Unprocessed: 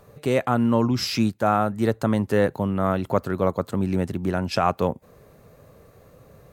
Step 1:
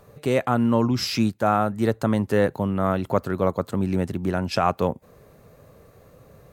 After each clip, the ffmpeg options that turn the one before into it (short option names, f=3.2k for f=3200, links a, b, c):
-af anull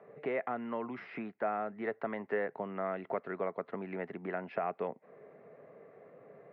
-filter_complex "[0:a]acrossover=split=710|1800[a][b][c];[a]acompressor=threshold=-34dB:ratio=4[d];[b]acompressor=threshold=-36dB:ratio=4[e];[c]acompressor=threshold=-39dB:ratio=4[f];[d][e][f]amix=inputs=3:normalize=0,highpass=f=170:w=0.5412,highpass=f=170:w=1.3066,equalizer=f=420:t=q:w=4:g=8,equalizer=f=680:t=q:w=4:g=8,equalizer=f=2k:t=q:w=4:g=8,lowpass=f=2.3k:w=0.5412,lowpass=f=2.3k:w=1.3066,volume=-7dB"